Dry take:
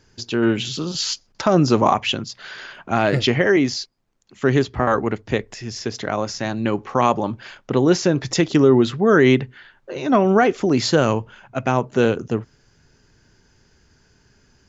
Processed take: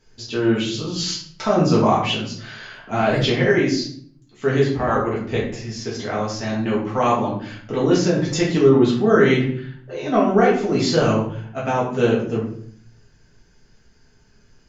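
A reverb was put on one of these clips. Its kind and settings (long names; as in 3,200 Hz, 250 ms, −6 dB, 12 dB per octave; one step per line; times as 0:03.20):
rectangular room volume 81 cubic metres, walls mixed, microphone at 1.6 metres
level −8 dB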